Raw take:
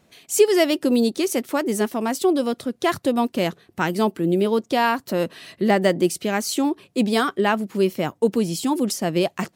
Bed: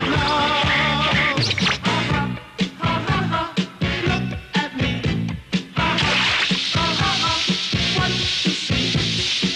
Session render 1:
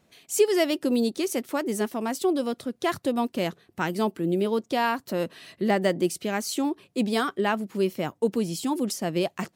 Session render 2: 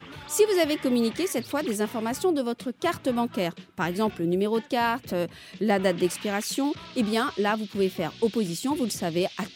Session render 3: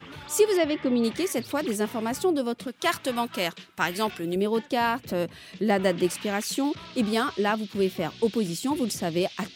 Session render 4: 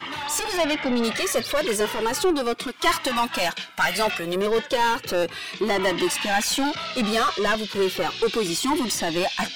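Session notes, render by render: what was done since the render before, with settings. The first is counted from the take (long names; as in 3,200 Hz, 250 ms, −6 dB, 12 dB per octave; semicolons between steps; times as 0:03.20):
level −5 dB
mix in bed −23.5 dB
0:00.57–0:01.04: high-frequency loss of the air 170 metres; 0:02.67–0:04.36: tilt shelving filter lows −6.5 dB, about 720 Hz
mid-hump overdrive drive 25 dB, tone 5,700 Hz, clips at −8.5 dBFS; flanger whose copies keep moving one way falling 0.34 Hz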